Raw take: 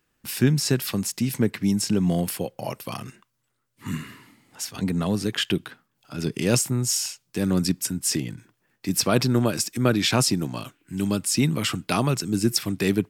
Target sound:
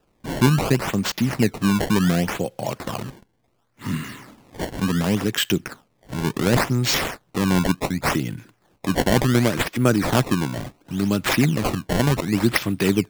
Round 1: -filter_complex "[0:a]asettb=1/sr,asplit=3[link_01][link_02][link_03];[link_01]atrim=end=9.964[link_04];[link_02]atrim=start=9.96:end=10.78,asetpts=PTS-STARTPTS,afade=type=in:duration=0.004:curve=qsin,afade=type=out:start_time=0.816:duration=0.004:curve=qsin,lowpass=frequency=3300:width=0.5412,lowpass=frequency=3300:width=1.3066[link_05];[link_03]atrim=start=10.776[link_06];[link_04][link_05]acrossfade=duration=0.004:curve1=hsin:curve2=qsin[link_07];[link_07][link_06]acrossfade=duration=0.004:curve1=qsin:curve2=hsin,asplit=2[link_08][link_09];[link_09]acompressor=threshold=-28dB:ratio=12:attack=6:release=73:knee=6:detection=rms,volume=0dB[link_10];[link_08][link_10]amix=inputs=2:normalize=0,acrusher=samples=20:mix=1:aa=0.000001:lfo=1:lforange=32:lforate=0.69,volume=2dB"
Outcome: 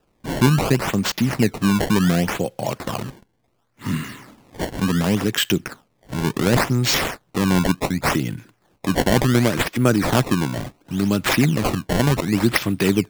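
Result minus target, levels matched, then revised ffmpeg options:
downward compressor: peak gain reduction −8.5 dB
-filter_complex "[0:a]asettb=1/sr,asplit=3[link_01][link_02][link_03];[link_01]atrim=end=9.964[link_04];[link_02]atrim=start=9.96:end=10.78,asetpts=PTS-STARTPTS,afade=type=in:duration=0.004:curve=qsin,afade=type=out:start_time=0.816:duration=0.004:curve=qsin,lowpass=frequency=3300:width=0.5412,lowpass=frequency=3300:width=1.3066[link_05];[link_03]atrim=start=10.776[link_06];[link_04][link_05]acrossfade=duration=0.004:curve1=hsin:curve2=qsin[link_07];[link_07][link_06]acrossfade=duration=0.004:curve1=qsin:curve2=hsin,asplit=2[link_08][link_09];[link_09]acompressor=threshold=-37dB:ratio=12:attack=6:release=73:knee=6:detection=rms,volume=0dB[link_10];[link_08][link_10]amix=inputs=2:normalize=0,acrusher=samples=20:mix=1:aa=0.000001:lfo=1:lforange=32:lforate=0.69,volume=2dB"

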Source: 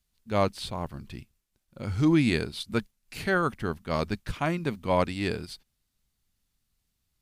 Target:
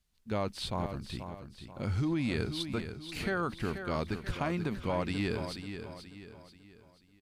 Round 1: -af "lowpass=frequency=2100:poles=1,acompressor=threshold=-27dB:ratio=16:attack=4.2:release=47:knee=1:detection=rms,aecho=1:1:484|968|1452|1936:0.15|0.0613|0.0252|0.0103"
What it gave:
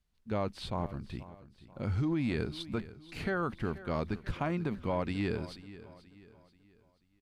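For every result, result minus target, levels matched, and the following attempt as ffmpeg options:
8,000 Hz band −8.0 dB; echo-to-direct −7.5 dB
-af "lowpass=frequency=7000:poles=1,acompressor=threshold=-27dB:ratio=16:attack=4.2:release=47:knee=1:detection=rms,aecho=1:1:484|968|1452|1936:0.15|0.0613|0.0252|0.0103"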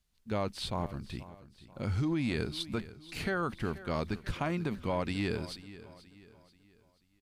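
echo-to-direct −7.5 dB
-af "lowpass=frequency=7000:poles=1,acompressor=threshold=-27dB:ratio=16:attack=4.2:release=47:knee=1:detection=rms,aecho=1:1:484|968|1452|1936|2420:0.355|0.145|0.0596|0.0245|0.01"

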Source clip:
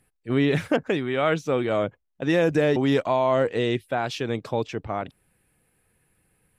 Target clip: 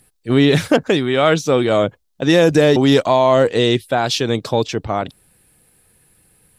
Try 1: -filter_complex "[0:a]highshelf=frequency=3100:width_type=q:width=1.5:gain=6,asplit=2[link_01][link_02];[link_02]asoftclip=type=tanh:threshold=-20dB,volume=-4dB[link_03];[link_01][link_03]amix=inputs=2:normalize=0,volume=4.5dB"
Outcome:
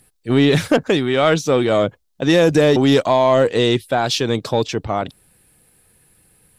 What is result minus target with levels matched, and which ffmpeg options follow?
soft clipping: distortion +14 dB
-filter_complex "[0:a]highshelf=frequency=3100:width_type=q:width=1.5:gain=6,asplit=2[link_01][link_02];[link_02]asoftclip=type=tanh:threshold=-10dB,volume=-4dB[link_03];[link_01][link_03]amix=inputs=2:normalize=0,volume=4.5dB"

